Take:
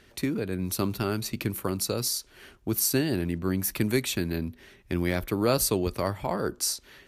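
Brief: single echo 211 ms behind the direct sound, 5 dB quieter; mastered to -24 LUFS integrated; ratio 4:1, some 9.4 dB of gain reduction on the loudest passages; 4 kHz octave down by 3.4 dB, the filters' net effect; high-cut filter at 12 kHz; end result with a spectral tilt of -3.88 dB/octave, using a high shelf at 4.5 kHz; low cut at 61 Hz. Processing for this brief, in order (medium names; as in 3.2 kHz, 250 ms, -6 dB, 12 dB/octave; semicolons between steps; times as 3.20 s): high-pass 61 Hz; low-pass 12 kHz; peaking EQ 4 kHz -8.5 dB; treble shelf 4.5 kHz +6 dB; compression 4:1, threshold -31 dBFS; delay 211 ms -5 dB; trim +9.5 dB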